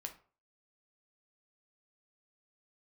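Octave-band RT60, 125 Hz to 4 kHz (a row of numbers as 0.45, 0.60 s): 0.45, 0.40, 0.45, 0.40, 0.35, 0.25 s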